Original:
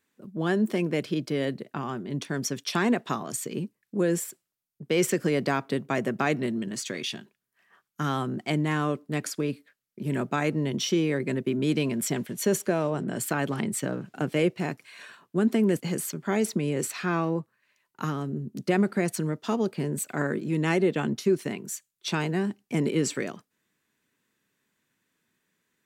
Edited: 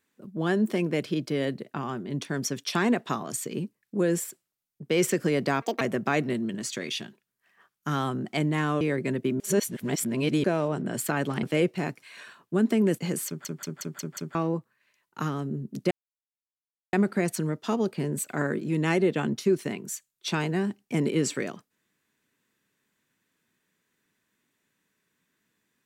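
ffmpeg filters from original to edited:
-filter_complex "[0:a]asplit=14[s0][s1][s2][s3][s4][s5][s6][s7][s8][s9][s10][s11][s12][s13];[s0]atrim=end=5.624[s14];[s1]atrim=start=5.62:end=5.94,asetpts=PTS-STARTPTS,asetrate=74529,aresample=44100,atrim=end_sample=8350,asetpts=PTS-STARTPTS[s15];[s2]atrim=start=5.936:end=8.942[s16];[s3]atrim=start=11.028:end=11.622[s17];[s4]atrim=start=11.618:end=12.662,asetpts=PTS-STARTPTS,areverse[s18];[s5]atrim=start=12.658:end=13.652[s19];[s6]atrim=start=14.248:end=16.272[s20];[s7]atrim=start=16.088:end=16.272[s21];[s8]atrim=start=16.088:end=16.272[s22];[s9]atrim=start=16.088:end=16.272[s23];[s10]atrim=start=16.088:end=16.272[s24];[s11]atrim=start=16.088:end=16.272[s25];[s12]atrim=start=17.168:end=18.73,asetpts=PTS-STARTPTS,afade=t=out:st=1.558:d=0.004:c=hsin,apad=pad_dur=1.02[s26];[s13]atrim=start=18.73,asetpts=PTS-STARTPTS,afade=t=in:d=0.004:c=hsin[s27];[s14][s15]acrossfade=d=0.004:c1=hsin:c2=hsin[s28];[s28][s16]acrossfade=d=0.004:c1=hsin:c2=hsin[s29];[s29][s17]acrossfade=d=0.004:c1=hsin:c2=hsin[s30];[s30][s18]acrossfade=d=0.004:c1=hsin:c2=hsin[s31];[s31][s19]acrossfade=d=0.004:c1=hsin:c2=hsin[s32];[s32][s20]acrossfade=d=0.004:c1=hsin:c2=hsin[s33];[s33][s21]acrossfade=d=0.004:c1=hsin:c2=hsin[s34];[s34][s22]acrossfade=d=0.004:c1=hsin:c2=hsin[s35];[s35][s23]acrossfade=d=0.004:c1=hsin:c2=hsin[s36];[s36][s24]acrossfade=d=0.004:c1=hsin:c2=hsin[s37];[s37][s25]acrossfade=d=0.004:c1=hsin:c2=hsin[s38];[s26][s27]concat=n=2:v=0:a=1[s39];[s38][s39]acrossfade=d=0.004:c1=hsin:c2=hsin"

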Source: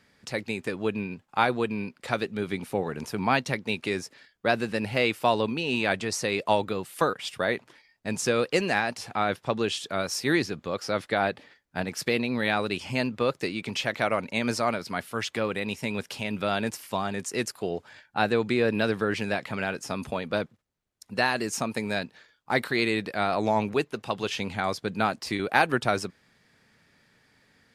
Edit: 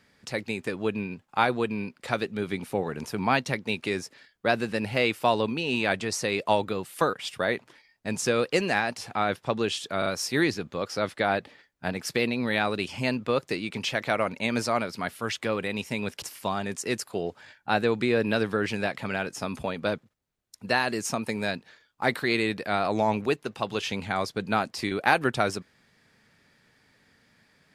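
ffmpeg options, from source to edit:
-filter_complex "[0:a]asplit=4[s0][s1][s2][s3];[s0]atrim=end=10.022[s4];[s1]atrim=start=9.978:end=10.022[s5];[s2]atrim=start=9.978:end=16.142[s6];[s3]atrim=start=16.698[s7];[s4][s5]acrossfade=d=0.004:c1=hsin:c2=hsin[s8];[s8][s6]acrossfade=d=0.004:c1=hsin:c2=hsin[s9];[s9][s7]acrossfade=d=0.004:c1=hsin:c2=hsin"

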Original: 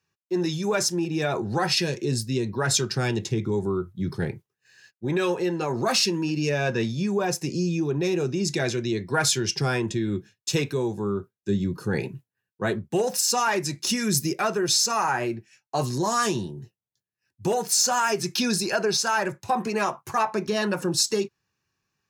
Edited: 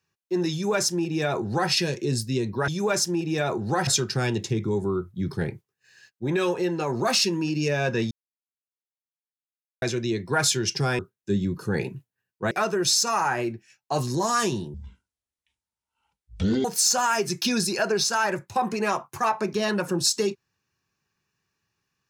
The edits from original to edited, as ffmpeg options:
-filter_complex "[0:a]asplit=9[s0][s1][s2][s3][s4][s5][s6][s7][s8];[s0]atrim=end=2.682[s9];[s1]atrim=start=0.518:end=1.712[s10];[s2]atrim=start=2.678:end=6.92,asetpts=PTS-STARTPTS,afade=t=out:st=4.238:d=0.004:c=hsin[s11];[s3]atrim=start=6.92:end=8.63,asetpts=PTS-STARTPTS,volume=0[s12];[s4]atrim=start=8.63:end=9.802,asetpts=PTS-STARTPTS,afade=t=in:d=0.004:c=hsin[s13];[s5]atrim=start=11.178:end=12.702[s14];[s6]atrim=start=14.338:end=16.574[s15];[s7]atrim=start=16.57:end=17.58,asetpts=PTS-STARTPTS,asetrate=23373,aresample=44100[s16];[s8]atrim=start=17.576[s17];[s9][s10]acrossfade=d=0.004:c1=hsin:c2=hsin[s18];[s11][s12][s13]concat=n=3:v=0:a=1[s19];[s18][s19]acrossfade=d=0.004:c1=hsin:c2=hsin[s20];[s20][s14]acrossfade=d=0.004:c1=hsin:c2=hsin[s21];[s21][s15]acrossfade=d=0.004:c1=hsin:c2=hsin[s22];[s22][s16]acrossfade=d=0.004:c1=hsin:c2=hsin[s23];[s23][s17]acrossfade=d=0.004:c1=hsin:c2=hsin"

